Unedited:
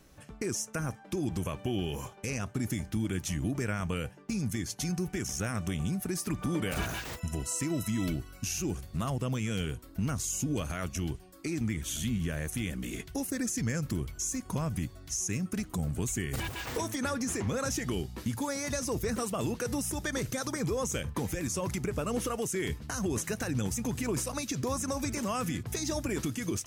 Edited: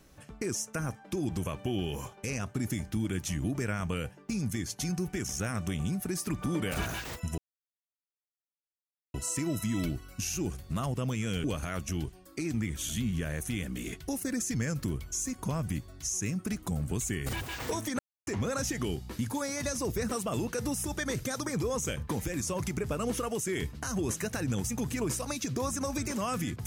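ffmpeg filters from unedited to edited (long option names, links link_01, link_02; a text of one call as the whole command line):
ffmpeg -i in.wav -filter_complex "[0:a]asplit=5[link_01][link_02][link_03][link_04][link_05];[link_01]atrim=end=7.38,asetpts=PTS-STARTPTS,afade=type=out:start_time=7.376:duration=0.004:curve=hsin,apad=pad_dur=1.76[link_06];[link_02]atrim=start=7.38:end=9.682,asetpts=PTS-STARTPTS,afade=type=in:duration=0.004:curve=hsin[link_07];[link_03]atrim=start=10.508:end=17.06,asetpts=PTS-STARTPTS,afade=type=out:start_time=6.548:duration=0.004:curve=hsin[link_08];[link_04]atrim=start=17.06:end=17.34,asetpts=PTS-STARTPTS,volume=0[link_09];[link_05]atrim=start=17.34,asetpts=PTS-STARTPTS,afade=type=in:duration=0.004:curve=hsin[link_10];[link_06][link_07]concat=n=2:v=0:a=1[link_11];[link_08][link_09][link_10]concat=n=3:v=0:a=1[link_12];[link_11][link_12]acrossfade=duration=0.004:curve1=hsin:curve2=hsin" out.wav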